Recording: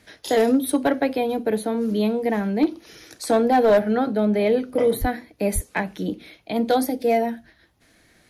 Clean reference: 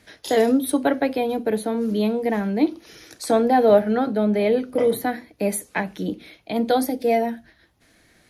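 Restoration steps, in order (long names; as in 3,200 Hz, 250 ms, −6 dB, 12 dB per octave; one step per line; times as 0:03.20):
clipped peaks rebuilt −11 dBFS
high-pass at the plosives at 0:05.00/0:05.54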